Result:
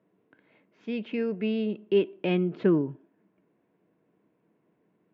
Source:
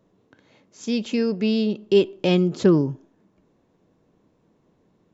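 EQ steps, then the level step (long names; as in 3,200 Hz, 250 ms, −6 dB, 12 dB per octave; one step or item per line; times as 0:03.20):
loudspeaker in its box 240–2,400 Hz, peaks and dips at 250 Hz −6 dB, 380 Hz −4 dB, 540 Hz −8 dB, 830 Hz −8 dB, 1,200 Hz −8 dB, 1,800 Hz −3 dB
0.0 dB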